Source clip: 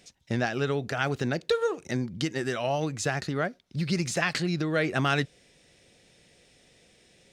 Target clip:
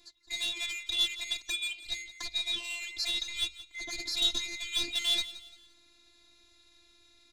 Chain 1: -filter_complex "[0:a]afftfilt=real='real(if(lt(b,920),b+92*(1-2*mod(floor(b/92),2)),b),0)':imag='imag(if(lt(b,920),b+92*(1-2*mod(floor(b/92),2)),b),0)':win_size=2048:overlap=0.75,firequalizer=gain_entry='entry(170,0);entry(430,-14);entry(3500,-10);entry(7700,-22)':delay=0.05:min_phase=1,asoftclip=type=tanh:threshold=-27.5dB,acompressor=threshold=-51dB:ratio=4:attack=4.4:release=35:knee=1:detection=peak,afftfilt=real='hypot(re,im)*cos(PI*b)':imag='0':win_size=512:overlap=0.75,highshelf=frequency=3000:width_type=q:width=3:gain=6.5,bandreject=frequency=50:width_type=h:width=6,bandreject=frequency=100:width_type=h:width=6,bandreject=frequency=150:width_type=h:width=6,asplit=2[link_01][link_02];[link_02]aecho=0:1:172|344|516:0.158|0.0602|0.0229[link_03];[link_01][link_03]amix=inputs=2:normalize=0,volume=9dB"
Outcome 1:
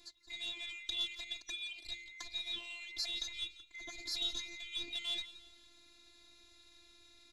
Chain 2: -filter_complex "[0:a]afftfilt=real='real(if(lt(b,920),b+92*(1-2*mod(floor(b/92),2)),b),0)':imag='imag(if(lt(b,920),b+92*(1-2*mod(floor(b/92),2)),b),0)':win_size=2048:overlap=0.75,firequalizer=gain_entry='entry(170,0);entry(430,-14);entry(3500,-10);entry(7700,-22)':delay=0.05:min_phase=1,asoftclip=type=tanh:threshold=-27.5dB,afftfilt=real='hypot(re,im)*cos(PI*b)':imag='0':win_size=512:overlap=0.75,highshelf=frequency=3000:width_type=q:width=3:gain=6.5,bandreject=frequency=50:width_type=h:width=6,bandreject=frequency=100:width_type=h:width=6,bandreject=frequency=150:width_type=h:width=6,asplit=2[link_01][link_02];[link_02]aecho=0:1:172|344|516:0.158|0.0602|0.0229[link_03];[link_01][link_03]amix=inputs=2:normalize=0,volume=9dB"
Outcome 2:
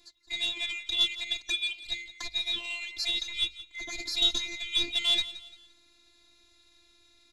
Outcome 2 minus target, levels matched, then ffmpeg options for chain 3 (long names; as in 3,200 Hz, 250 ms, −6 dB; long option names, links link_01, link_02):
soft clipping: distortion −9 dB
-filter_complex "[0:a]afftfilt=real='real(if(lt(b,920),b+92*(1-2*mod(floor(b/92),2)),b),0)':imag='imag(if(lt(b,920),b+92*(1-2*mod(floor(b/92),2)),b),0)':win_size=2048:overlap=0.75,firequalizer=gain_entry='entry(170,0);entry(430,-14);entry(3500,-10);entry(7700,-22)':delay=0.05:min_phase=1,asoftclip=type=tanh:threshold=-35.5dB,afftfilt=real='hypot(re,im)*cos(PI*b)':imag='0':win_size=512:overlap=0.75,highshelf=frequency=3000:width_type=q:width=3:gain=6.5,bandreject=frequency=50:width_type=h:width=6,bandreject=frequency=100:width_type=h:width=6,bandreject=frequency=150:width_type=h:width=6,asplit=2[link_01][link_02];[link_02]aecho=0:1:172|344|516:0.158|0.0602|0.0229[link_03];[link_01][link_03]amix=inputs=2:normalize=0,volume=9dB"